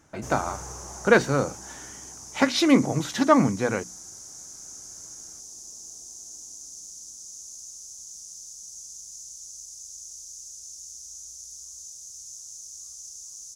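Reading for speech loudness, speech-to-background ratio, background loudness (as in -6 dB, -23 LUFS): -23.0 LUFS, 16.5 dB, -39.5 LUFS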